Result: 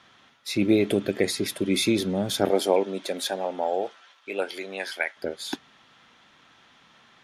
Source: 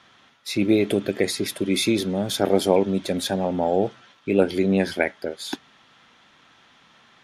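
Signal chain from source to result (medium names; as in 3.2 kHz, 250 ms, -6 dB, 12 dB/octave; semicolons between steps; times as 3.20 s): 2.50–5.15 s: high-pass 310 Hz -> 1 kHz 12 dB/octave; trim -1.5 dB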